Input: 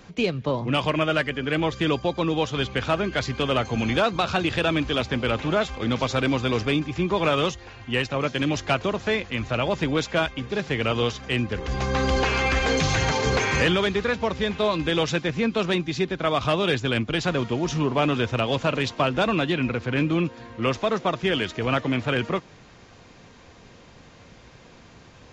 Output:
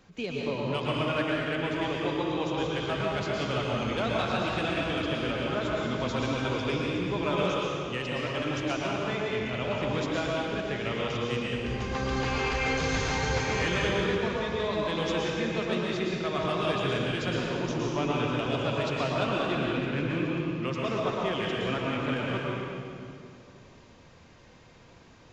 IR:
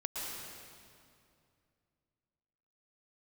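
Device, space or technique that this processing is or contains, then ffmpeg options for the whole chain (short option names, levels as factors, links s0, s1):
stairwell: -filter_complex "[1:a]atrim=start_sample=2205[s0];[0:a][s0]afir=irnorm=-1:irlink=0,volume=0.398"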